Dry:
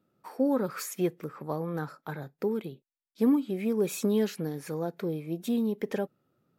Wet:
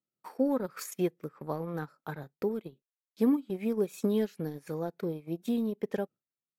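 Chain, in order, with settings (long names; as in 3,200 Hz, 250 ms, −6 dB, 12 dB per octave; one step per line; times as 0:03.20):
noise gate with hold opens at −49 dBFS
transient designer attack +2 dB, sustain −12 dB
level −2.5 dB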